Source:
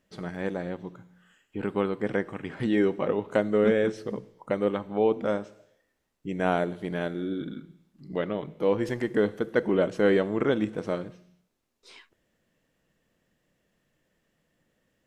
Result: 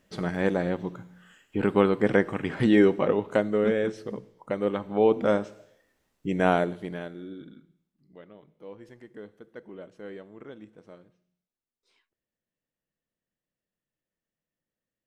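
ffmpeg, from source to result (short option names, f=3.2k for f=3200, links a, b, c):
-af "volume=12.5dB,afade=t=out:st=2.58:d=1.03:silence=0.398107,afade=t=in:st=4.56:d=0.8:silence=0.473151,afade=t=out:st=6.36:d=0.69:silence=0.251189,afade=t=out:st=7.05:d=1.06:silence=0.251189"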